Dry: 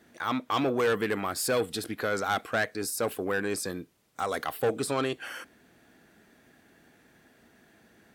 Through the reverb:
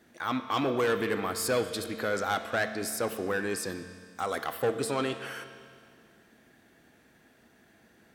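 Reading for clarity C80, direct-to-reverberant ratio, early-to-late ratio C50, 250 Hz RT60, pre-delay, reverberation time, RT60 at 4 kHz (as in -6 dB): 10.5 dB, 8.0 dB, 9.5 dB, 2.1 s, 4 ms, 2.1 s, 2.1 s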